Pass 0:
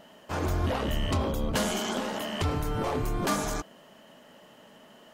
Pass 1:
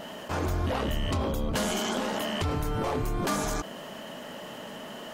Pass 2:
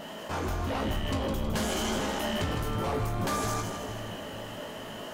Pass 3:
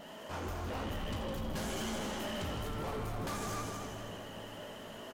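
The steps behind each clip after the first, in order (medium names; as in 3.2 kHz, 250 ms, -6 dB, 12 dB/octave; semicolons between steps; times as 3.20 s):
level flattener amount 50%; trim -2 dB
feedback comb 54 Hz, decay 0.27 s, harmonics all, mix 80%; saturation -29 dBFS, distortion -17 dB; two-band feedback delay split 710 Hz, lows 446 ms, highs 159 ms, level -7 dB; trim +5 dB
loudspeakers at several distances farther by 12 m -11 dB, 29 m -10 dB, 86 m -6 dB; vibrato 15 Hz 44 cents; hard clipper -24.5 dBFS, distortion -17 dB; trim -8.5 dB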